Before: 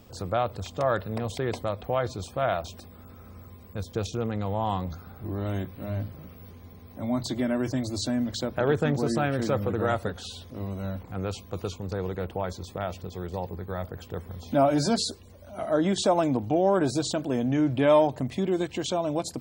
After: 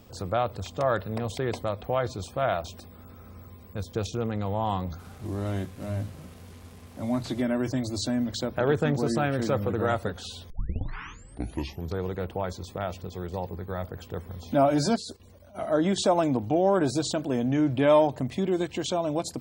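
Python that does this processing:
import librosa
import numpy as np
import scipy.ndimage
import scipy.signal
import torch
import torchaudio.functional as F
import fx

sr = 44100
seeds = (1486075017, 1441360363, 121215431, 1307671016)

y = fx.delta_mod(x, sr, bps=64000, step_db=-45.5, at=(4.99, 7.42))
y = fx.level_steps(y, sr, step_db=13, at=(14.95, 15.54), fade=0.02)
y = fx.edit(y, sr, fx.tape_start(start_s=10.5, length_s=1.53), tone=tone)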